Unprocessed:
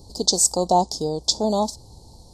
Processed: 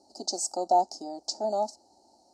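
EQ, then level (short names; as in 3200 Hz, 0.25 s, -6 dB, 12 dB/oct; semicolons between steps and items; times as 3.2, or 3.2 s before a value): BPF 430–4800 Hz; fixed phaser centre 700 Hz, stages 8; notch 2400 Hz, Q 25; -2.0 dB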